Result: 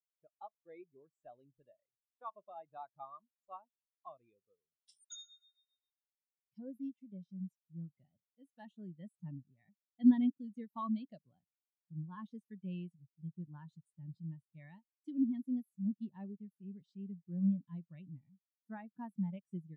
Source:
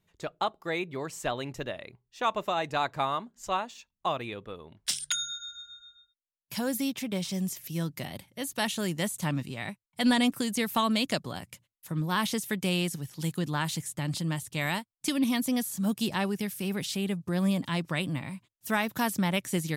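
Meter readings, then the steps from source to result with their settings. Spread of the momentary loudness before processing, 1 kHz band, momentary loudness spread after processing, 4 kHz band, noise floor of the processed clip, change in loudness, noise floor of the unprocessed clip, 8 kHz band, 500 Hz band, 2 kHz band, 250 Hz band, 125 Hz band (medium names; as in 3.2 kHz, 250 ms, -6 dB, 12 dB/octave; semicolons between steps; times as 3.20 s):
12 LU, -19.0 dB, 21 LU, under -25 dB, under -85 dBFS, -9.0 dB, under -85 dBFS, under -25 dB, -23.0 dB, under -30 dB, -7.0 dB, -12.0 dB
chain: spectral contrast expander 2.5:1; trim -1 dB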